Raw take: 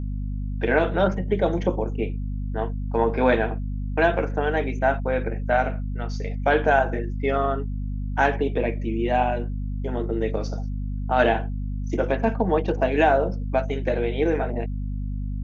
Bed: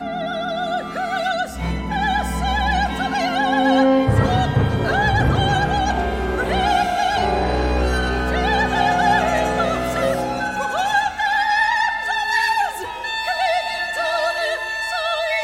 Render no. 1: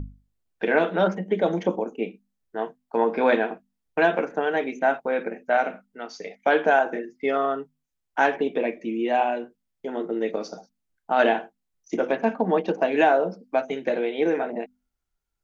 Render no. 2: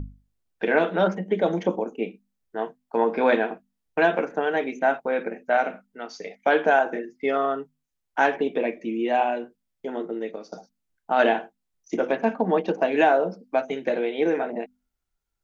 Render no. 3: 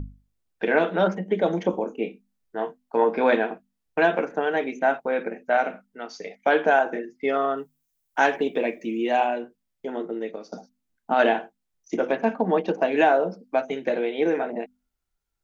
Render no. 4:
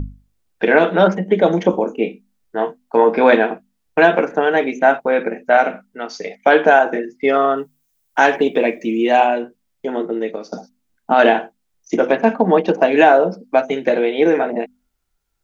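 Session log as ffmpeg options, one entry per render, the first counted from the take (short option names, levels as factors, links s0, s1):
-af "bandreject=f=50:t=h:w=6,bandreject=f=100:t=h:w=6,bandreject=f=150:t=h:w=6,bandreject=f=200:t=h:w=6,bandreject=f=250:t=h:w=6"
-filter_complex "[0:a]asplit=2[s0][s1];[s0]atrim=end=10.52,asetpts=PTS-STARTPTS,afade=t=out:st=9.89:d=0.63:silence=0.223872[s2];[s1]atrim=start=10.52,asetpts=PTS-STARTPTS,afade=t=in:d=0.004:c=hsin:silence=0.223872[s3];[s2][s3]concat=n=2:v=0:a=1"
-filter_complex "[0:a]asettb=1/sr,asplit=3[s0][s1][s2];[s0]atrim=end=1.714[s3];[s1]atrim=start=1.71:end=3.09,asetpts=PTS-STARTPTS,afade=t=in:d=0.004:c=qsin,afade=t=out:st=1.376:d=0.004:c=qsin,asplit=2[s4][s5];[s5]adelay=24,volume=0.376[s6];[s4][s6]amix=inputs=2:normalize=0,atrim=end_sample=60858[s7];[s2]atrim=start=3.086[s8];[s3][s7]acrossfade=d=0.004:c1=hsin:c2=qsin[s9];[s9][s8]acrossfade=d=0.004:c1=qsin:c2=hsin,asettb=1/sr,asplit=3[s10][s11][s12];[s10]atrim=end=7.574[s13];[s11]atrim=start=7.57:end=9.27,asetpts=PTS-STARTPTS,afade=t=in:d=0.004:c=qsin,afade=t=out:st=1.696:d=0.004:c=qsin,aemphasis=mode=production:type=50kf[s14];[s12]atrim=start=9.266[s15];[s13][s14]acrossfade=d=0.004:c1=hsin:c2=qsin[s16];[s16][s15]acrossfade=d=0.004:c1=qsin:c2=hsin,asettb=1/sr,asplit=3[s17][s18][s19];[s17]atrim=end=10.534[s20];[s18]atrim=start=10.53:end=11.14,asetpts=PTS-STARTPTS,afade=t=in:d=0.004:c=qsin,afade=t=out:st=0.606:d=0.004:c=qsin,equalizer=f=240:w=3.1:g=11[s21];[s19]atrim=start=11.136[s22];[s20][s21]acrossfade=d=0.004:c1=hsin:c2=qsin[s23];[s23][s22]acrossfade=d=0.004:c1=qsin:c2=hsin"
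-af "volume=2.66,alimiter=limit=0.891:level=0:latency=1"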